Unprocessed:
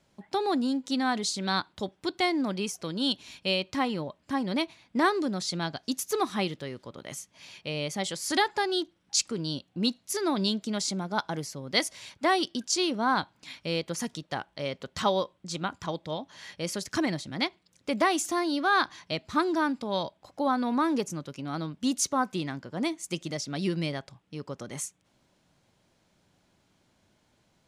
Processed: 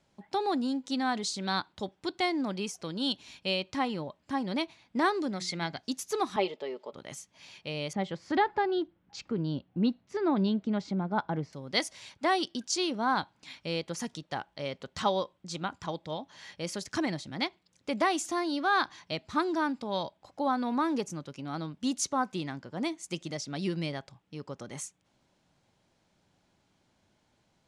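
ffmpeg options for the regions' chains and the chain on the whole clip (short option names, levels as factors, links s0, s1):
-filter_complex "[0:a]asettb=1/sr,asplit=3[s0][s1][s2];[s0]atrim=end=5.314[s3];[s1]atrim=start=5.31:end=5.8,asetpts=PTS-STARTPTS,afade=t=in:d=0.004:c=qsin,afade=t=out:st=0.486:d=0.004:c=qsin,equalizer=f=2100:t=o:w=0.24:g=14.5,bandreject=f=60:t=h:w=6,bandreject=f=120:t=h:w=6,bandreject=f=180:t=h:w=6,bandreject=f=240:t=h:w=6,bandreject=f=300:t=h:w=6,bandreject=f=360:t=h:w=6[s4];[s2]atrim=start=5.796[s5];[s3][s4]acrossfade=d=0.004:c1=hsin:c2=qsin[s6];[s6][s5]acrossfade=d=0.004:c1=qsin:c2=hsin,asettb=1/sr,asplit=3[s7][s8][s9];[s7]atrim=end=6.364[s10];[s8]atrim=start=6.36:end=6.93,asetpts=PTS-STARTPTS,afade=t=in:d=0.004:c=qsin,afade=t=out:st=0.566:d=0.004:c=qsin,highpass=380,equalizer=f=380:t=q:w=4:g=8,equalizer=f=580:t=q:w=4:g=10,equalizer=f=870:t=q:w=4:g=5,equalizer=f=1600:t=q:w=4:g=-7,equalizer=f=3900:t=q:w=4:g=-5,equalizer=f=5900:t=q:w=4:g=-9,lowpass=f=6500:w=0.5412,lowpass=f=6500:w=1.3066,aecho=1:1:4.6:0.56,atrim=end_sample=25137[s11];[s9]atrim=start=6.926[s12];[s10][s11]acrossfade=d=0.004:c1=hsin:c2=qsin[s13];[s13][s12]acrossfade=d=0.004:c1=qsin:c2=hsin,asettb=1/sr,asplit=3[s14][s15][s16];[s14]atrim=end=7.934[s17];[s15]atrim=start=7.93:end=11.53,asetpts=PTS-STARTPTS,afade=t=in:d=0.004:c=qsin,afade=t=out:st=3.596:d=0.004:c=qsin,lowpass=2200,lowshelf=f=380:g=6.5[s18];[s16]atrim=start=11.526[s19];[s17][s18]acrossfade=d=0.004:c1=hsin:c2=qsin[s20];[s20][s19]acrossfade=d=0.004:c1=qsin:c2=hsin,lowpass=9300,equalizer=f=830:t=o:w=0.26:g=3,volume=0.708"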